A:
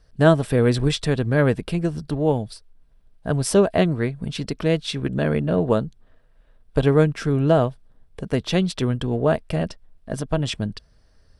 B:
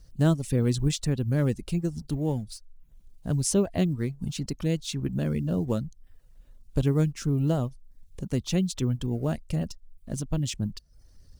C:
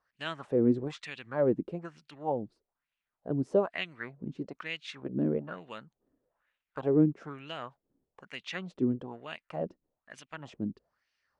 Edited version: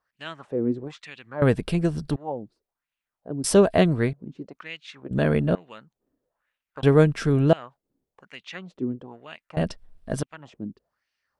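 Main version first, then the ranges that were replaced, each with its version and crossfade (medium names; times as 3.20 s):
C
1.42–2.16 s: from A
3.44–4.13 s: from A
5.11–5.55 s: from A
6.83–7.53 s: from A
9.57–10.23 s: from A
not used: B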